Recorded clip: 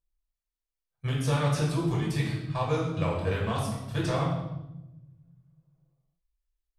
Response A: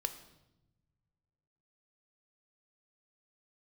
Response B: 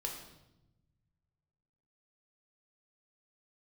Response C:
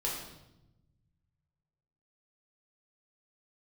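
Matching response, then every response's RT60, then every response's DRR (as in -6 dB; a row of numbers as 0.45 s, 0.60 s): C; no single decay rate, 0.90 s, 0.90 s; 8.5 dB, 0.5 dB, -4.5 dB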